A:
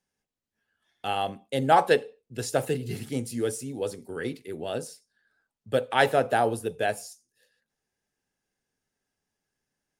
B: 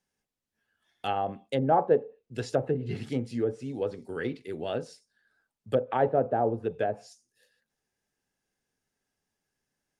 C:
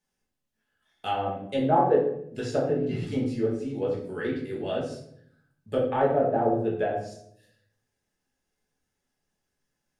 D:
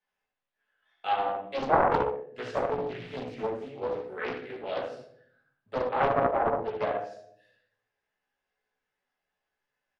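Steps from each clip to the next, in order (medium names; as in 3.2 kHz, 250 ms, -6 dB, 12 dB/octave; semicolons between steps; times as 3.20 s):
low-pass that closes with the level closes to 700 Hz, closed at -22 dBFS
simulated room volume 120 m³, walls mixed, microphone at 1.4 m; trim -3.5 dB
three-band isolator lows -16 dB, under 530 Hz, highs -21 dB, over 3.5 kHz; early reflections 16 ms -3 dB, 72 ms -6 dB; loudspeaker Doppler distortion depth 0.77 ms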